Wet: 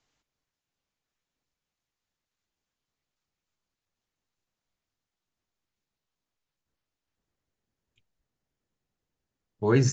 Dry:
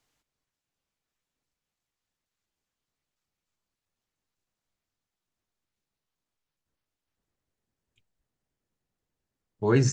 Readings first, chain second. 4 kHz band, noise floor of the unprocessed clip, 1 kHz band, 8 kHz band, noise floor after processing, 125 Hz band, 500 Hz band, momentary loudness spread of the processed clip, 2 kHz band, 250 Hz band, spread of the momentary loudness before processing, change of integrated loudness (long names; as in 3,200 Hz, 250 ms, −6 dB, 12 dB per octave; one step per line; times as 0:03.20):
0.0 dB, below −85 dBFS, 0.0 dB, −0.5 dB, below −85 dBFS, 0.0 dB, 0.0 dB, 7 LU, 0.0 dB, 0.0 dB, 7 LU, 0.0 dB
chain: downsampling to 16,000 Hz